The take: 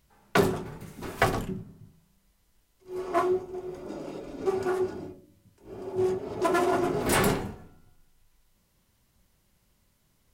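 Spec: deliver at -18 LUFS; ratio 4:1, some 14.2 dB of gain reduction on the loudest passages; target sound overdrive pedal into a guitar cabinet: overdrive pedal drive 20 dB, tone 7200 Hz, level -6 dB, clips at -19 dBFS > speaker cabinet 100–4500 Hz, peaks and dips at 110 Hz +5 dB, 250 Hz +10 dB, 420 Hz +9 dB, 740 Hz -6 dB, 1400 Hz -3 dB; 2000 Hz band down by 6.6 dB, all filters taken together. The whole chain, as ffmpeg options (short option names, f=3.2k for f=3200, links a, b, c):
-filter_complex "[0:a]equalizer=f=2k:t=o:g=-7,acompressor=threshold=-35dB:ratio=4,asplit=2[a][b];[b]highpass=f=720:p=1,volume=20dB,asoftclip=type=tanh:threshold=-19dB[c];[a][c]amix=inputs=2:normalize=0,lowpass=f=7.2k:p=1,volume=-6dB,highpass=100,equalizer=f=110:t=q:w=4:g=5,equalizer=f=250:t=q:w=4:g=10,equalizer=f=420:t=q:w=4:g=9,equalizer=f=740:t=q:w=4:g=-6,equalizer=f=1.4k:t=q:w=4:g=-3,lowpass=f=4.5k:w=0.5412,lowpass=f=4.5k:w=1.3066,volume=10dB"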